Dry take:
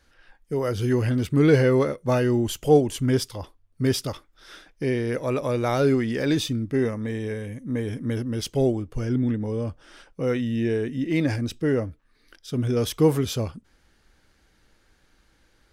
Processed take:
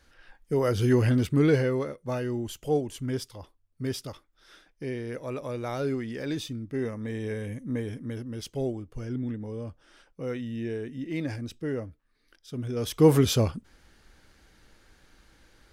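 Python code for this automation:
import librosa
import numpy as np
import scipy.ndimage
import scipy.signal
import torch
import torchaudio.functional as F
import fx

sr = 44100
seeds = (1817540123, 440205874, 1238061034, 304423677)

y = fx.gain(x, sr, db=fx.line((1.15, 0.5), (1.81, -9.0), (6.63, -9.0), (7.53, -0.5), (8.12, -8.5), (12.73, -8.5), (13.16, 3.5)))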